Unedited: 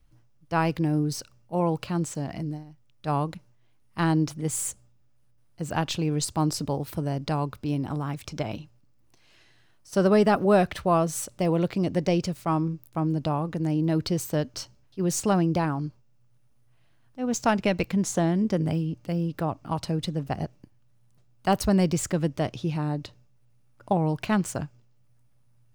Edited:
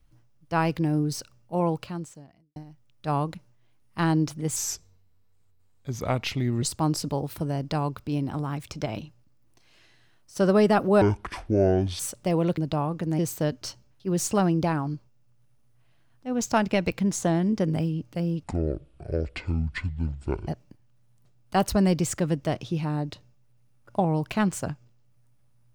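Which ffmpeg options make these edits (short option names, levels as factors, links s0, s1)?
-filter_complex "[0:a]asplit=10[s0][s1][s2][s3][s4][s5][s6][s7][s8][s9];[s0]atrim=end=2.56,asetpts=PTS-STARTPTS,afade=t=out:st=1.68:d=0.88:c=qua[s10];[s1]atrim=start=2.56:end=4.564,asetpts=PTS-STARTPTS,afade=t=in:d=0.004:c=hsin[s11];[s2]atrim=start=4.56:end=6.19,asetpts=PTS-STARTPTS,asetrate=34839,aresample=44100,atrim=end_sample=90991,asetpts=PTS-STARTPTS[s12];[s3]atrim=start=6.186:end=10.584[s13];[s4]atrim=start=10.58:end=11.14,asetpts=PTS-STARTPTS,asetrate=25137,aresample=44100,atrim=end_sample=43326,asetpts=PTS-STARTPTS[s14];[s5]atrim=start=11.136:end=11.722[s15];[s6]atrim=start=13.108:end=13.722[s16];[s7]atrim=start=14.108:end=19.364[s17];[s8]atrim=start=19.36:end=20.4,asetpts=PTS-STARTPTS,asetrate=22491,aresample=44100,atrim=end_sample=89929,asetpts=PTS-STARTPTS[s18];[s9]atrim=start=20.396[s19];[s10][s11]concat=n=2:v=0:a=1[s20];[s20][s12]acrossfade=d=0.004:c1=hsin:c2=hsin[s21];[s21][s13]acrossfade=d=0.004:c1=hsin:c2=hsin[s22];[s22][s14]acrossfade=d=0.004:c1=hsin:c2=hsin[s23];[s23][s15]acrossfade=d=0.004:c1=hsin:c2=hsin[s24];[s24][s16]acrossfade=d=0.004:c1=hsin:c2=hsin[s25];[s25][s17]acrossfade=d=0.004:c1=hsin:c2=hsin[s26];[s26][s18]acrossfade=d=0.004:c1=hsin:c2=hsin[s27];[s27][s19]acrossfade=d=0.004:c1=hsin:c2=hsin"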